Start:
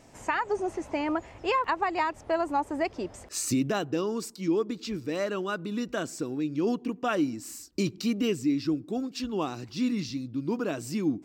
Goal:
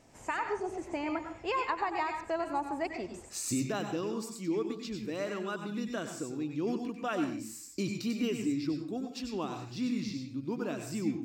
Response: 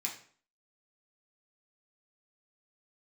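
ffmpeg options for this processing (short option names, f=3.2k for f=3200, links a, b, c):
-filter_complex "[0:a]asplit=2[a][b];[1:a]atrim=start_sample=2205,afade=t=out:st=0.23:d=0.01,atrim=end_sample=10584,adelay=94[c];[b][c]afir=irnorm=-1:irlink=0,volume=-5.5dB[d];[a][d]amix=inputs=2:normalize=0,volume=-6dB"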